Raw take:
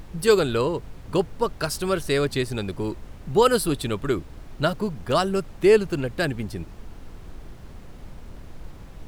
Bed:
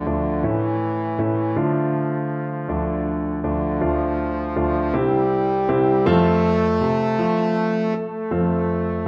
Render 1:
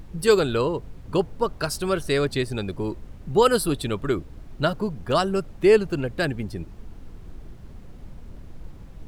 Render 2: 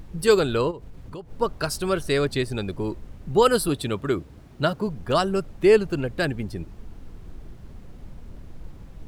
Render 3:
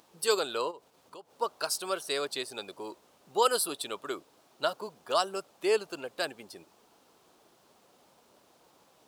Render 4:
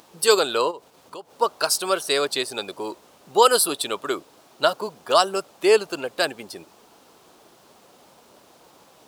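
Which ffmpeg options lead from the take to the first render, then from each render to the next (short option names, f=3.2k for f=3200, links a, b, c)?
-af "afftdn=nr=6:nf=-43"
-filter_complex "[0:a]asplit=3[a][b][c];[a]afade=t=out:st=0.7:d=0.02[d];[b]acompressor=threshold=-35dB:ratio=5:attack=3.2:release=140:knee=1:detection=peak,afade=t=in:st=0.7:d=0.02,afade=t=out:st=1.3:d=0.02[e];[c]afade=t=in:st=1.3:d=0.02[f];[d][e][f]amix=inputs=3:normalize=0,asettb=1/sr,asplit=3[g][h][i];[g]atrim=end=3.684[j];[h]atrim=start=3.68:end=4.87,asetpts=PTS-STARTPTS,afade=t=in:d=0.004:c=qsin,afade=t=out:st=1.186:d=0.004:c=qsin,highpass=67[k];[i]atrim=start=4.866[l];[j][k]acrossfade=d=0.004:c1=hsin:c2=qsin[m];[m][l]acrossfade=d=0.004:c1=qsin:c2=hsin"
-af "highpass=760,equalizer=f=1.9k:w=1.3:g=-10"
-af "volume=10dB,alimiter=limit=-3dB:level=0:latency=1"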